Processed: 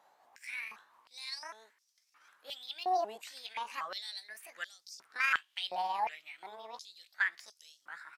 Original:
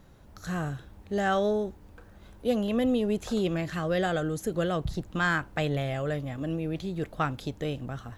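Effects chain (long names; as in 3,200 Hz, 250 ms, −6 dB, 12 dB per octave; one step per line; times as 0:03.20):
pitch shifter swept by a sawtooth +8 semitones, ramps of 761 ms
downsampling to 32,000 Hz
high-pass on a step sequencer 2.8 Hz 790–5,400 Hz
level −7.5 dB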